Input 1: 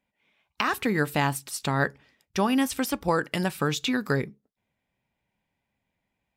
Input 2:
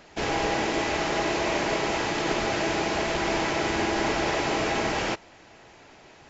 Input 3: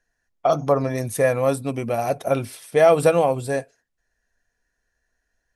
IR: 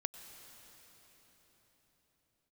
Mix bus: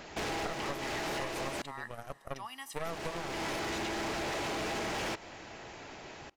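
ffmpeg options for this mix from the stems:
-filter_complex "[0:a]highpass=900,aecho=1:1:1:0.65,volume=-19dB,asplit=2[link_01][link_02];[link_02]volume=-3.5dB[link_03];[1:a]acompressor=threshold=-29dB:ratio=6,asoftclip=type=hard:threshold=-35.5dB,volume=3dB,asplit=3[link_04][link_05][link_06];[link_04]atrim=end=1.62,asetpts=PTS-STARTPTS,afade=type=out:start_time=1.616:duration=0.004:curve=hsin[link_07];[link_05]atrim=start=1.62:end=2.85,asetpts=PTS-STARTPTS,volume=0[link_08];[link_06]atrim=start=2.85,asetpts=PTS-STARTPTS,afade=type=in:duration=0.004:curve=hsin[link_09];[link_07][link_08][link_09]concat=n=3:v=0:a=1,asplit=2[link_10][link_11];[link_11]volume=-21dB[link_12];[2:a]aeval=exprs='1.06*(cos(1*acos(clip(val(0)/1.06,-1,1)))-cos(1*PI/2))+0.168*(cos(6*acos(clip(val(0)/1.06,-1,1)))-cos(6*PI/2))+0.119*(cos(7*acos(clip(val(0)/1.06,-1,1)))-cos(7*PI/2))':channel_layout=same,volume=-15.5dB[link_13];[3:a]atrim=start_sample=2205[link_14];[link_03][link_12]amix=inputs=2:normalize=0[link_15];[link_15][link_14]afir=irnorm=-1:irlink=0[link_16];[link_01][link_10][link_13][link_16]amix=inputs=4:normalize=0,acompressor=threshold=-33dB:ratio=6"

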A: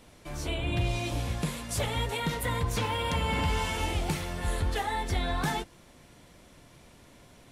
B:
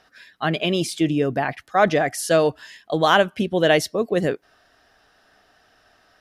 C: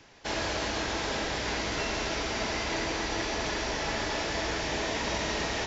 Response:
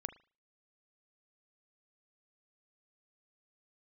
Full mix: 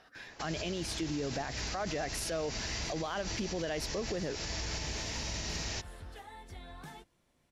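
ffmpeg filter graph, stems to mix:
-filter_complex "[0:a]adelay=1400,volume=-18.5dB[link_01];[1:a]highshelf=frequency=6100:gain=-6.5,acompressor=threshold=-24dB:ratio=2,volume=-2dB,asplit=2[link_02][link_03];[2:a]equalizer=frequency=3400:width=3.3:gain=-6,acrossover=split=170|3000[link_04][link_05][link_06];[link_05]acompressor=threshold=-45dB:ratio=6[link_07];[link_04][link_07][link_06]amix=inputs=3:normalize=0,adelay=150,volume=1.5dB[link_08];[link_03]apad=whole_len=393265[link_09];[link_01][link_09]sidechaincompress=threshold=-41dB:ratio=8:attack=16:release=355[link_10];[link_10][link_02][link_08]amix=inputs=3:normalize=0,alimiter=level_in=3dB:limit=-24dB:level=0:latency=1:release=91,volume=-3dB"

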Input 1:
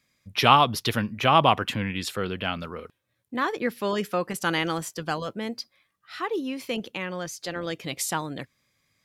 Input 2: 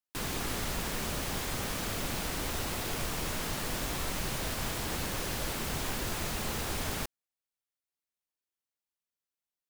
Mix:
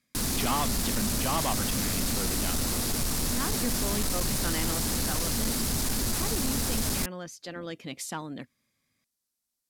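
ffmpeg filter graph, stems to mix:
ffmpeg -i stem1.wav -i stem2.wav -filter_complex "[0:a]volume=-7dB[link_01];[1:a]lowshelf=frequency=150:gain=8.5,aexciter=amount=3:drive=5.5:freq=4100,volume=2dB[link_02];[link_01][link_02]amix=inputs=2:normalize=0,lowpass=12000,equalizer=frequency=240:width_type=o:width=0.53:gain=9,asoftclip=type=tanh:threshold=-22.5dB" out.wav

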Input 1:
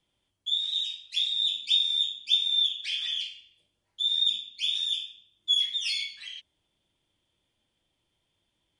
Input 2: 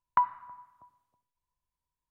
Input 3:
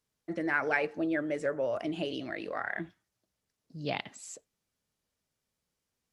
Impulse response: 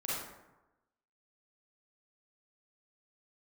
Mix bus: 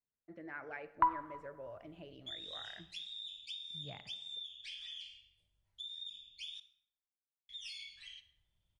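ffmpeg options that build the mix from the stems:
-filter_complex "[0:a]acompressor=threshold=-33dB:ratio=6,adelay=1800,volume=-12dB,asplit=3[link_01][link_02][link_03];[link_01]atrim=end=6.6,asetpts=PTS-STARTPTS,afade=type=out:start_time=6.596:duration=0.004:curve=hsin[link_04];[link_02]atrim=start=6.6:end=7.49,asetpts=PTS-STARTPTS,volume=0[link_05];[link_03]atrim=start=7.49,asetpts=PTS-STARTPTS,afade=type=in:duration=0.004:curve=hsin[link_06];[link_04][link_05][link_06]concat=n=3:v=0:a=1,asplit=2[link_07][link_08];[link_08]volume=-14dB[link_09];[1:a]adelay=850,volume=-4.5dB,asplit=2[link_10][link_11];[link_11]volume=-16.5dB[link_12];[2:a]bass=frequency=250:gain=1,treble=frequency=4000:gain=-14,volume=-17dB,asplit=2[link_13][link_14];[link_14]volume=-18dB[link_15];[3:a]atrim=start_sample=2205[link_16];[link_09][link_12][link_15]amix=inputs=3:normalize=0[link_17];[link_17][link_16]afir=irnorm=-1:irlink=0[link_18];[link_07][link_10][link_13][link_18]amix=inputs=4:normalize=0,asubboost=boost=10.5:cutoff=91"

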